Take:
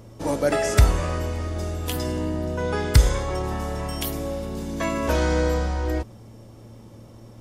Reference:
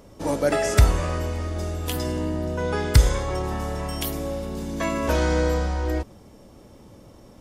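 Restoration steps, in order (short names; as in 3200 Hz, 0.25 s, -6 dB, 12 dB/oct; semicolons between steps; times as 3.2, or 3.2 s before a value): de-hum 113.5 Hz, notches 3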